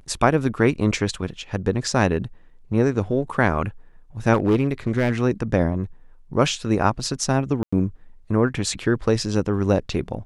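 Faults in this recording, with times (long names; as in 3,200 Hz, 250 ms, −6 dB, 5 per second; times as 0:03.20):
0:04.33–0:05.21: clipping −13 dBFS
0:07.63–0:07.72: drop-out 95 ms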